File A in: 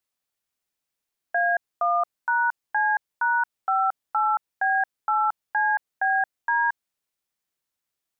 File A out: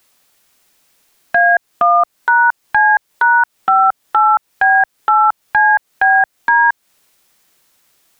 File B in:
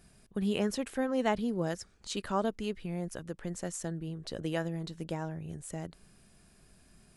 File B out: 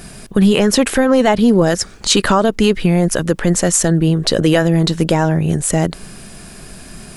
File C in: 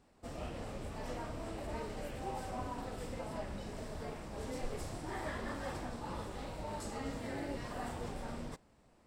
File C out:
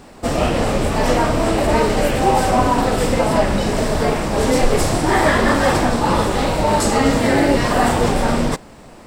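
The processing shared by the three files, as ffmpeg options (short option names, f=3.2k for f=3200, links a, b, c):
-af "equalizer=f=66:w=0.84:g=-5,acompressor=threshold=-33dB:ratio=4,apsyclip=31.5dB,volume=-5dB"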